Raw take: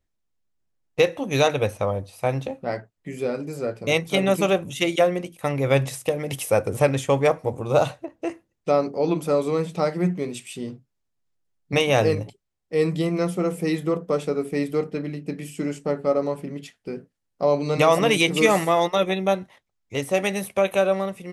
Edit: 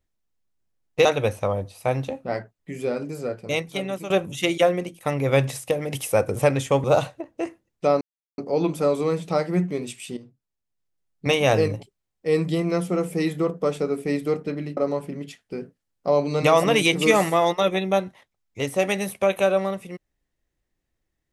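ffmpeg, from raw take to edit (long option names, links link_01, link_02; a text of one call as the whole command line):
ffmpeg -i in.wav -filter_complex "[0:a]asplit=7[link_01][link_02][link_03][link_04][link_05][link_06][link_07];[link_01]atrim=end=1.052[link_08];[link_02]atrim=start=1.428:end=4.48,asetpts=PTS-STARTPTS,afade=type=out:start_time=2.032:duration=1.02:silence=0.199526[link_09];[link_03]atrim=start=4.48:end=7.222,asetpts=PTS-STARTPTS,afade=type=in:duration=0.004:curve=hsin:silence=0.199526[link_10];[link_04]atrim=start=7.678:end=8.85,asetpts=PTS-STARTPTS,afade=type=out:start_time=1.168:duration=0.004:curve=hsin,apad=pad_dur=0.37[link_11];[link_05]atrim=start=8.85:end=10.64,asetpts=PTS-STARTPTS,afade=type=in:duration=0.004:curve=hsin,afade=type=out:start_time=1.786:duration=0.004:curve=hsin:silence=0.237137[link_12];[link_06]atrim=start=10.64:end=15.242,asetpts=PTS-STARTPTS,afade=type=in:duration=1.2:silence=0.237137[link_13];[link_07]atrim=start=16.118[link_14];[link_09][link_10]concat=n=2:v=0:a=1[link_15];[link_08][link_15]acrossfade=duration=0.004:curve1=hsin:curve2=hsin[link_16];[link_11][link_12][link_13]concat=n=3:v=0:a=1[link_17];[link_16][link_17]acrossfade=duration=0.004:curve1=hsin:curve2=hsin[link_18];[link_18][link_14]acrossfade=duration=0.004:curve1=hsin:curve2=hsin" out.wav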